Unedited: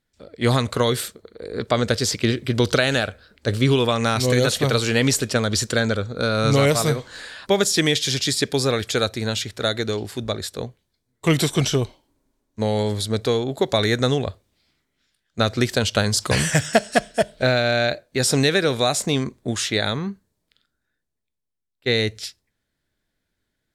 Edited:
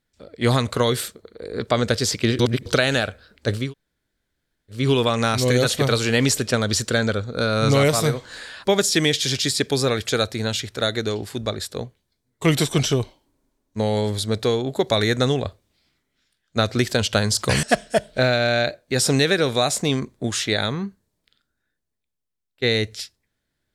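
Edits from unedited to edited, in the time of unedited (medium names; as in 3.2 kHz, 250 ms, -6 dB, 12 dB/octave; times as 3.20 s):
2.39–2.66 s: reverse
3.62 s: insert room tone 1.18 s, crossfade 0.24 s
16.45–16.87 s: delete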